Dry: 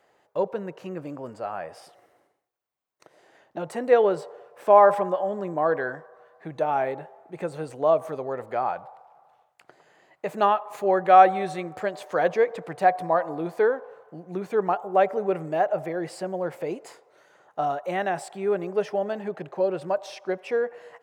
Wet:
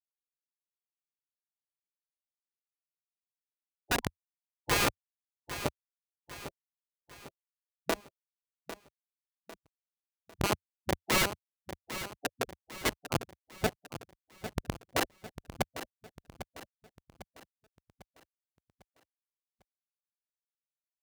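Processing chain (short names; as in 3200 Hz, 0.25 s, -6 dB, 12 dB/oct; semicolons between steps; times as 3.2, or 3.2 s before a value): Schmitt trigger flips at -13 dBFS; feedback echo 0.8 s, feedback 45%, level -12 dB; spectral gate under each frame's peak -10 dB weak; gain +5.5 dB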